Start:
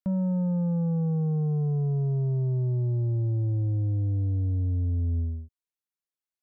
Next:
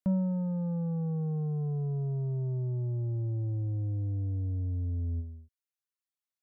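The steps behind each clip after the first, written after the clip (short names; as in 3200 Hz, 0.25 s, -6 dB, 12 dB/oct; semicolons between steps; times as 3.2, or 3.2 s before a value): reverb removal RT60 1.4 s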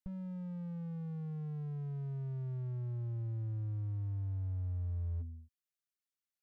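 band shelf 590 Hz -14 dB; slew limiter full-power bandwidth 2.4 Hz; gain -3 dB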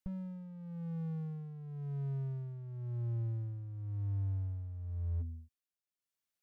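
tremolo 0.95 Hz, depth 66%; gain +3 dB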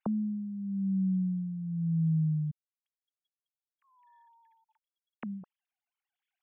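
sine-wave speech; gain +5 dB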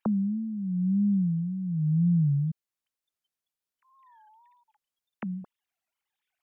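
wow and flutter 140 cents; gain +4.5 dB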